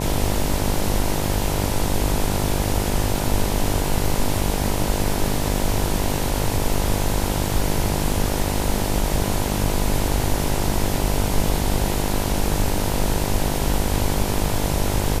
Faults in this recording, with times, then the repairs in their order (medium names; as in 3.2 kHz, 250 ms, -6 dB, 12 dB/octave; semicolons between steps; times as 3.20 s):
buzz 50 Hz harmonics 20 -25 dBFS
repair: de-hum 50 Hz, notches 20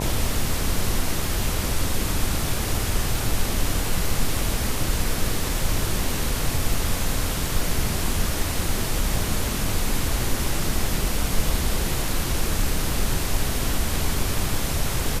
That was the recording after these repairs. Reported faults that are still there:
nothing left